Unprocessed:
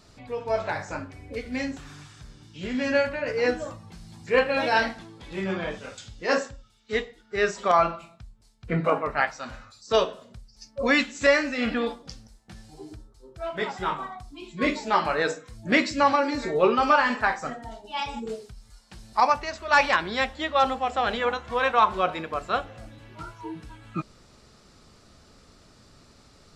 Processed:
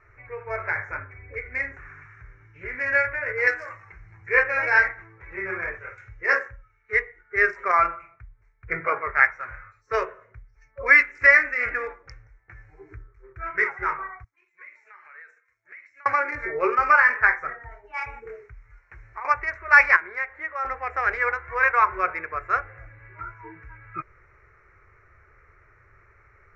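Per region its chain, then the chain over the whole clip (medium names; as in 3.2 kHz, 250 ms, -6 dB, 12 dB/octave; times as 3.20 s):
3.47–3.92 s: companding laws mixed up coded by mu + tilt EQ +3.5 dB/octave
12.89–13.69 s: high-order bell 700 Hz -8.5 dB 1 oct + waveshaping leveller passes 1
14.24–16.06 s: companding laws mixed up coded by A + differentiator + compression 16:1, threshold -45 dBFS
18.20–19.25 s: CVSD coder 64 kbps + compression 10:1, threshold -29 dBFS
19.96–20.65 s: high-pass 310 Hz 6 dB/octave + treble shelf 3.4 kHz -6 dB + compression 1.5:1, threshold -38 dBFS
whole clip: local Wiener filter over 9 samples; FFT filter 110 Hz 0 dB, 230 Hz -28 dB, 380 Hz -2 dB, 740 Hz -9 dB, 1.4 kHz +7 dB, 2.2 kHz +12 dB, 3.3 kHz -28 dB, 5.3 kHz -3 dB, 9.6 kHz -27 dB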